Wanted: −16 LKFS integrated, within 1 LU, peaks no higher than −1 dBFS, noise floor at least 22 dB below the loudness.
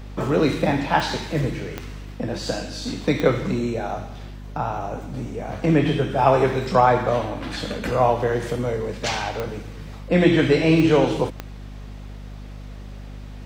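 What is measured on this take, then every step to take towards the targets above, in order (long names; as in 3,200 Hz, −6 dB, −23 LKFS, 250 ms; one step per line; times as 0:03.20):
number of clicks 6; mains hum 50 Hz; hum harmonics up to 250 Hz; level of the hum −34 dBFS; integrated loudness −22.0 LKFS; sample peak −3.5 dBFS; target loudness −16.0 LKFS
→ click removal
mains-hum notches 50/100/150/200/250 Hz
level +6 dB
brickwall limiter −1 dBFS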